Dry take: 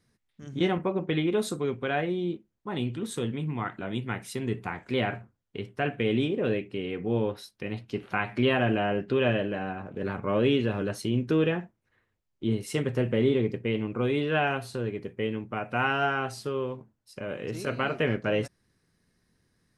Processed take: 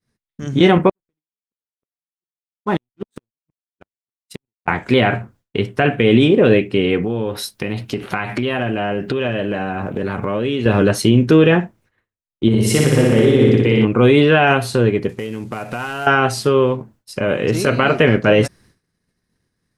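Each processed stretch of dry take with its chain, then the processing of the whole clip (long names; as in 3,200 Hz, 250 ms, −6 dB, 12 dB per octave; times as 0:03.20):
0:00.89–0:04.68: gate with flip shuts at −23 dBFS, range −31 dB + slack as between gear wheels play −54.5 dBFS + expander for the loud parts 2.5 to 1, over −57 dBFS
0:07.03–0:10.66: high-shelf EQ 9,000 Hz +9.5 dB + downward compressor 5 to 1, threshold −34 dBFS
0:12.48–0:13.85: downward compressor 2.5 to 1, threshold −30 dBFS + flutter between parallel walls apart 10.2 metres, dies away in 1.4 s
0:15.09–0:16.07: variable-slope delta modulation 64 kbit/s + downward compressor, threshold −39 dBFS
whole clip: downward expander −58 dBFS; boost into a limiter +18 dB; level −1.5 dB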